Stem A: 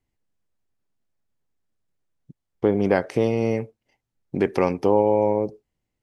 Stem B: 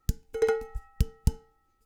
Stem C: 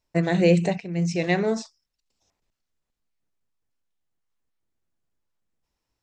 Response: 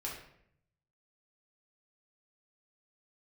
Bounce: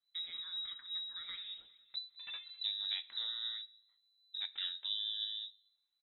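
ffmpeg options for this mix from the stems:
-filter_complex "[0:a]volume=0.422,asplit=3[s0][s1][s2];[s1]volume=0.119[s3];[1:a]flanger=delay=8.6:depth=5:regen=-34:speed=0.6:shape=triangular,aeval=exprs='0.2*sin(PI/2*3.98*val(0)/0.2)':c=same,adelay=1850,volume=0.2,asplit=2[s4][s5];[s5]volume=0.0668[s6];[2:a]alimiter=limit=0.15:level=0:latency=1:release=33,acompressor=threshold=0.0398:ratio=6,volume=0.631,asplit=3[s7][s8][s9];[s8]volume=0.224[s10];[s9]volume=0.119[s11];[s2]apad=whole_len=163448[s12];[s4][s12]sidechaincompress=threshold=0.0355:ratio=8:attack=16:release=1230[s13];[3:a]atrim=start_sample=2205[s14];[s3][s10]amix=inputs=2:normalize=0[s15];[s15][s14]afir=irnorm=-1:irlink=0[s16];[s6][s11]amix=inputs=2:normalize=0,aecho=0:1:204|408|612|816|1020|1224|1428:1|0.5|0.25|0.125|0.0625|0.0312|0.0156[s17];[s0][s13][s7][s16][s17]amix=inputs=5:normalize=0,equalizer=f=770:w=0.31:g=-12,flanger=delay=3:depth=9.1:regen=54:speed=0.89:shape=triangular,lowpass=f=3400:t=q:w=0.5098,lowpass=f=3400:t=q:w=0.6013,lowpass=f=3400:t=q:w=0.9,lowpass=f=3400:t=q:w=2.563,afreqshift=-4000"

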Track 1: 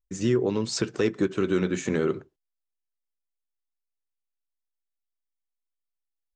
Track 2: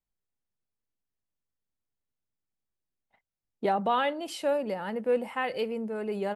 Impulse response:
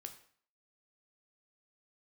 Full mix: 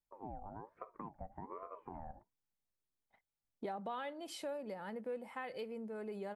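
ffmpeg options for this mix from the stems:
-filter_complex "[0:a]agate=range=0.282:threshold=0.0158:ratio=16:detection=peak,lowpass=f=1100:w=0.5412,lowpass=f=1100:w=1.3066,aeval=exprs='val(0)*sin(2*PI*620*n/s+620*0.4/1.2*sin(2*PI*1.2*n/s))':c=same,volume=0.158[s0];[1:a]bandreject=f=2800:w=10,volume=0.631[s1];[s0][s1]amix=inputs=2:normalize=0,acompressor=threshold=0.00562:ratio=2.5"

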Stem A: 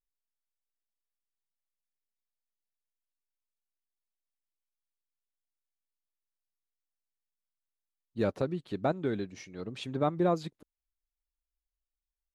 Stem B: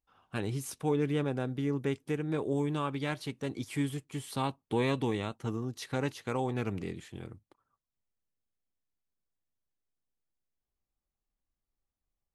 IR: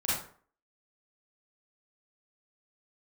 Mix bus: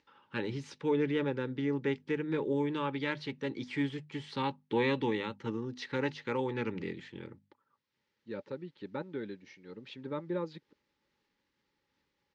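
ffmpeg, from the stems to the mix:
-filter_complex "[0:a]adelay=100,volume=0.447[s0];[1:a]bandreject=f=50:t=h:w=6,bandreject=f=100:t=h:w=6,bandreject=f=150:t=h:w=6,bandreject=f=200:t=h:w=6,bandreject=f=250:t=h:w=6,acompressor=mode=upward:threshold=0.00178:ratio=2.5,volume=1.06,asplit=2[s1][s2];[s2]apad=whole_len=549022[s3];[s0][s3]sidechaincompress=threshold=0.00398:ratio=8:attack=28:release=1450[s4];[s4][s1]amix=inputs=2:normalize=0,asuperstop=centerf=700:order=12:qfactor=3,highpass=160,equalizer=f=790:t=q:w=4:g=8,equalizer=f=1100:t=q:w=4:g=-6,equalizer=f=1900:t=q:w=4:g=5,lowpass=f=4900:w=0.5412,lowpass=f=4900:w=1.3066"

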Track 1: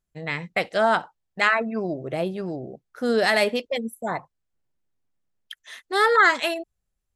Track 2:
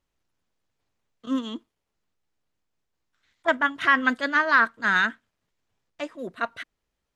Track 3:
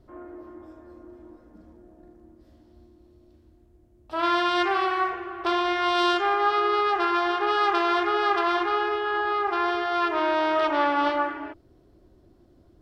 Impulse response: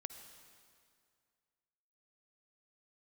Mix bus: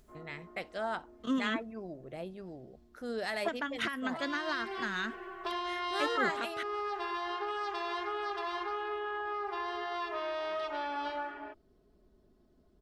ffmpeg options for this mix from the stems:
-filter_complex "[0:a]acompressor=mode=upward:threshold=0.0316:ratio=2.5,volume=0.168[s0];[1:a]acompressor=threshold=0.0708:ratio=6,volume=1.06[s1];[2:a]aecho=1:1:4.7:0.7,acrossover=split=180|3000[s2][s3][s4];[s3]acompressor=threshold=0.0708:ratio=6[s5];[s2][s5][s4]amix=inputs=3:normalize=0,volume=0.316[s6];[s1][s6]amix=inputs=2:normalize=0,acrossover=split=470|3000[s7][s8][s9];[s8]acompressor=threshold=0.0251:ratio=6[s10];[s7][s10][s9]amix=inputs=3:normalize=0,alimiter=limit=0.0794:level=0:latency=1:release=373,volume=1[s11];[s0][s11]amix=inputs=2:normalize=0"

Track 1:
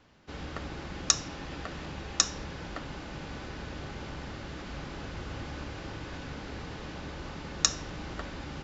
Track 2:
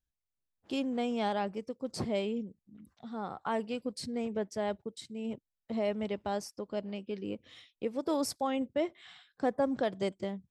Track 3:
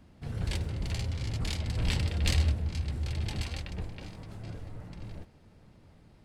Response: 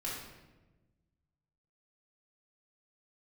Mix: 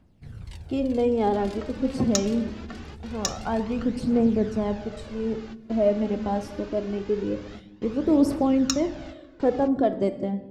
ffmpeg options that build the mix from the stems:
-filter_complex "[0:a]asoftclip=type=hard:threshold=0.531,adelay=1050,volume=0.596,asplit=2[s0][s1];[s1]volume=0.0794[s2];[1:a]tiltshelf=f=880:g=9,volume=1.19,asplit=3[s3][s4][s5];[s4]volume=0.355[s6];[2:a]acompressor=threshold=0.0282:ratio=6,volume=0.398[s7];[s5]apad=whole_len=427117[s8];[s0][s8]sidechaingate=range=0.0224:threshold=0.00224:ratio=16:detection=peak[s9];[3:a]atrim=start_sample=2205[s10];[s2][s6]amix=inputs=2:normalize=0[s11];[s11][s10]afir=irnorm=-1:irlink=0[s12];[s9][s3][s7][s12]amix=inputs=4:normalize=0,aphaser=in_gain=1:out_gain=1:delay=4:decay=0.47:speed=0.24:type=triangular"

